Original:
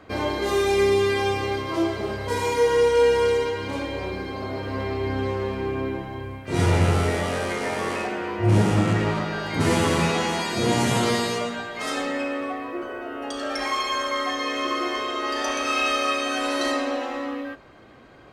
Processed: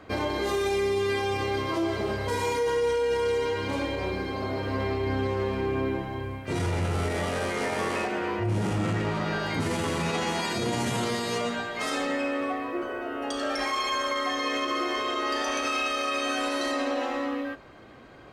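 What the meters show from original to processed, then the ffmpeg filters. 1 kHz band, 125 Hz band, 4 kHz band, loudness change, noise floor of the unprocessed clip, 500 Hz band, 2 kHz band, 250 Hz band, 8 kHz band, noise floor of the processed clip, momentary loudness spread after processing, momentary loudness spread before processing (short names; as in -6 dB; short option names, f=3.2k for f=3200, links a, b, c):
-3.0 dB, -6.0 dB, -3.5 dB, -4.0 dB, -40 dBFS, -4.5 dB, -3.0 dB, -4.0 dB, -4.0 dB, -40 dBFS, 5 LU, 11 LU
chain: -af "alimiter=limit=-19.5dB:level=0:latency=1:release=45"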